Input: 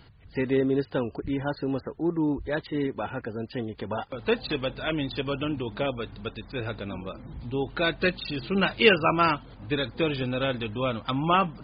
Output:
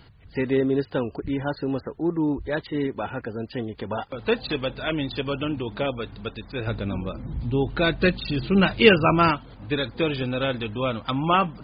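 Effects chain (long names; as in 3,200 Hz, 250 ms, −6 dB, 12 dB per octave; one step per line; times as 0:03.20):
0:06.67–0:09.31: low-shelf EQ 260 Hz +8.5 dB
level +2 dB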